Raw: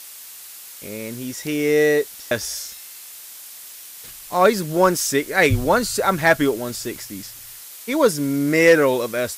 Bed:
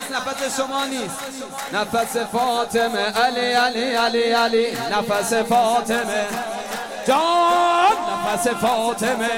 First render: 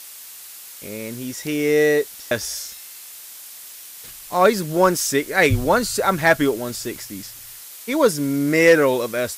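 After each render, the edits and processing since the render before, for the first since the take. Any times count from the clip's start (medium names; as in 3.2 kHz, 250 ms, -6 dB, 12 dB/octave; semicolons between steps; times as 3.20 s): no audible change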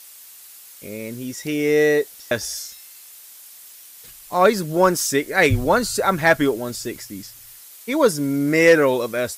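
noise reduction 6 dB, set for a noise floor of -40 dBFS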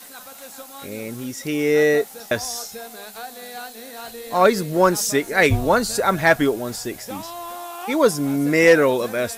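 add bed -17.5 dB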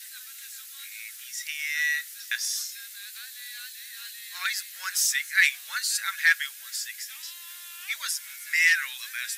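Chebyshev high-pass 1.7 kHz, order 4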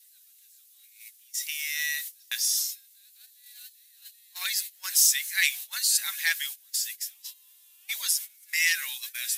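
gate -37 dBFS, range -20 dB; FFT filter 480 Hz 0 dB, 850 Hz +3 dB, 1.4 kHz -11 dB, 2.9 kHz +1 dB, 7.7 kHz +4 dB, 13 kHz +8 dB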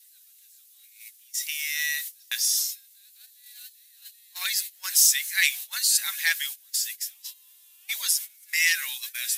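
trim +2 dB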